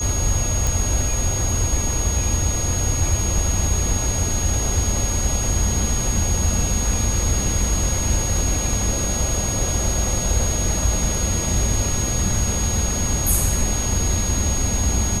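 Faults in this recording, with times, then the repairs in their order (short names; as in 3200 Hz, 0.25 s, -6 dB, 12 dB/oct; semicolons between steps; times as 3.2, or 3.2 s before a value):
tone 6600 Hz -24 dBFS
0.67 pop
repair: de-click; notch 6600 Hz, Q 30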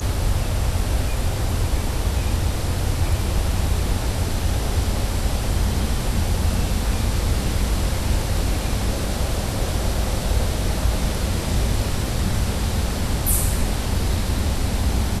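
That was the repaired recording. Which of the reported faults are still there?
none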